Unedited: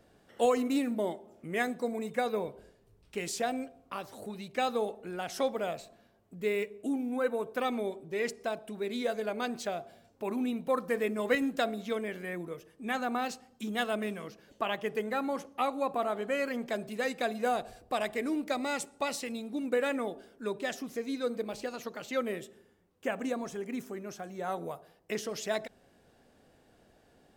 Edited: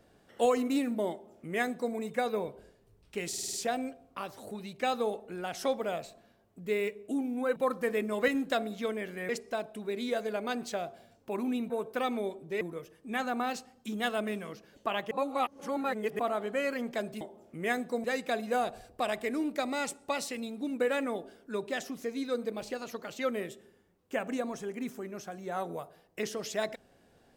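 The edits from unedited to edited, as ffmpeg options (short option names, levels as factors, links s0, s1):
-filter_complex "[0:a]asplit=14[s0][s1][s2][s3][s4][s5][s6][s7][s8][s9][s10][s11][s12][s13];[s0]atrim=end=3.332[s14];[s1]atrim=start=3.278:end=3.332[s15];[s2]atrim=start=3.278:end=3.332[s16];[s3]atrim=start=3.278:end=3.332[s17];[s4]atrim=start=3.278:end=3.332[s18];[s5]atrim=start=3.278:end=7.312[s19];[s6]atrim=start=10.628:end=12.362[s20];[s7]atrim=start=8.218:end=10.632[s21];[s8]atrim=start=7.308:end=8.222[s22];[s9]atrim=start=12.358:end=14.862[s23];[s10]atrim=start=14.858:end=15.942,asetpts=PTS-STARTPTS,areverse[s24];[s11]atrim=start=15.938:end=16.962[s25];[s12]atrim=start=1.108:end=1.942[s26];[s13]atrim=start=16.958[s27];[s14][s15]acrossfade=d=0.004:c1=hsin:c2=hsin[s28];[s28][s16]acrossfade=d=0.004:c1=hsin:c2=hsin[s29];[s29][s17]acrossfade=d=0.004:c1=hsin:c2=hsin[s30];[s30][s18]acrossfade=d=0.004:c1=hsin:c2=hsin[s31];[s31][s19]acrossfade=d=0.004:c1=hsin:c2=hsin[s32];[s32][s20]acrossfade=d=0.004:c1=hsin:c2=hsin[s33];[s33][s21]acrossfade=d=0.004:c1=hsin:c2=hsin[s34];[s34][s22]acrossfade=d=0.004:c1=hsin:c2=hsin[s35];[s35][s23]acrossfade=d=0.004:c1=hsin:c2=hsin[s36];[s36][s24]acrossfade=d=0.004:c1=hsin:c2=hsin[s37];[s37][s25]acrossfade=d=0.004:c1=hsin:c2=hsin[s38];[s38][s26]acrossfade=d=0.004:c1=hsin:c2=hsin[s39];[s39][s27]acrossfade=d=0.004:c1=hsin:c2=hsin"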